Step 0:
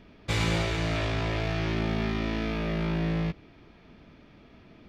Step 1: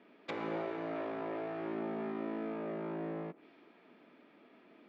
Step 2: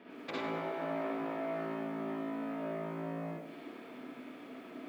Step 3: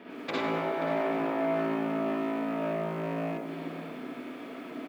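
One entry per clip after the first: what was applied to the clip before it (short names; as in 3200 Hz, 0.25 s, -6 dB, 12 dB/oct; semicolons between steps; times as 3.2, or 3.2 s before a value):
treble ducked by the level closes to 1100 Hz, closed at -27 dBFS; HPF 250 Hz 24 dB/oct; low-pass opened by the level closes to 2300 Hz, open at -34 dBFS; gain -4.5 dB
compressor 2.5:1, threshold -50 dBFS, peak gain reduction 11 dB; reverb RT60 0.35 s, pre-delay 48 ms, DRR -4.5 dB; lo-fi delay 98 ms, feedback 55%, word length 11-bit, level -11 dB; gain +5.5 dB
rattling part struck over -44 dBFS, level -45 dBFS; outdoor echo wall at 91 m, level -9 dB; gain +7 dB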